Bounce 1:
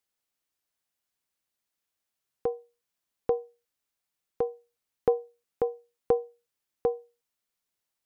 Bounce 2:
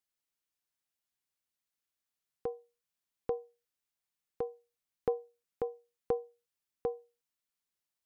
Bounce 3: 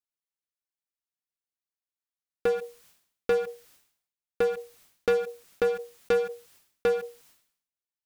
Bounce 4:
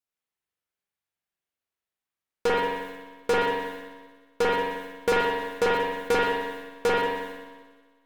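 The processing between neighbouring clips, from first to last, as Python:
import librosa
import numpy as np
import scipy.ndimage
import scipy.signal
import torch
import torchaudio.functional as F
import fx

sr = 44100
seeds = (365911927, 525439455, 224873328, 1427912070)

y1 = fx.peak_eq(x, sr, hz=580.0, db=-3.0, octaves=1.7)
y1 = y1 * 10.0 ** (-5.0 / 20.0)
y2 = fx.leveller(y1, sr, passes=5)
y2 = fx.sustainer(y2, sr, db_per_s=94.0)
y3 = fx.cheby_harmonics(y2, sr, harmonics=(6, 8), levels_db=(-10, -21), full_scale_db=-18.0)
y3 = fx.echo_heads(y3, sr, ms=61, heads='second and third', feedback_pct=53, wet_db=-16.0)
y3 = fx.rev_spring(y3, sr, rt60_s=1.1, pass_ms=(43,), chirp_ms=75, drr_db=-6.0)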